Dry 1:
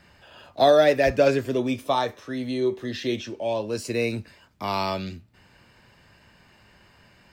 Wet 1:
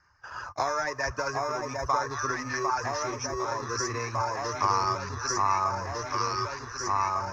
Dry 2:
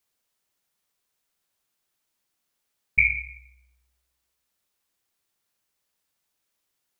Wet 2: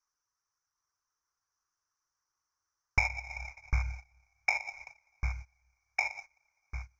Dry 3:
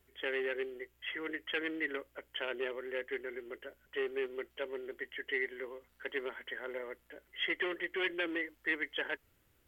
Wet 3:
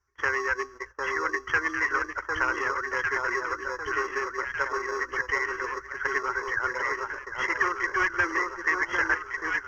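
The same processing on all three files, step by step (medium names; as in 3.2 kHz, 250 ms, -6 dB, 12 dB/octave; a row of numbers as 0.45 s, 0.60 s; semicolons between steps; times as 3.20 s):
rattle on loud lows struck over -31 dBFS, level -29 dBFS; Schroeder reverb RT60 3 s, combs from 30 ms, DRR 17.5 dB; reverb removal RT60 0.57 s; on a send: echo whose repeats swap between lows and highs 751 ms, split 1.3 kHz, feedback 68%, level -2 dB; on the sum: gate -51 dBFS, range -19 dB; in parallel at -11.5 dB: sample-rate reducer 1.5 kHz, jitter 0%; on the sum: compression 5:1, threshold -32 dBFS; FFT filter 110 Hz 0 dB, 210 Hz -16 dB, 350 Hz -7 dB, 650 Hz -8 dB, 1.1 kHz +13 dB, 1.5 kHz +9 dB, 3.5 kHz -18 dB, 5.9 kHz +15 dB, 8.5 kHz -20 dB; peak normalisation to -12 dBFS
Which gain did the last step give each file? +6.5 dB, +9.5 dB, +10.0 dB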